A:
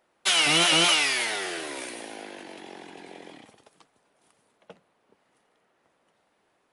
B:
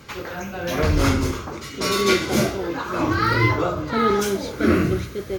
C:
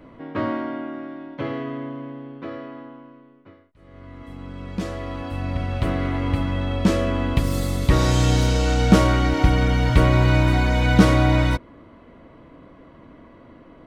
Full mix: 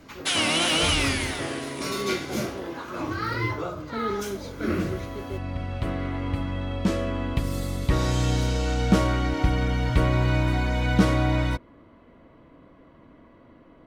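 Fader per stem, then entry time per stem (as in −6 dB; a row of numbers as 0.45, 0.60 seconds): −3.0, −9.0, −5.5 decibels; 0.00, 0.00, 0.00 seconds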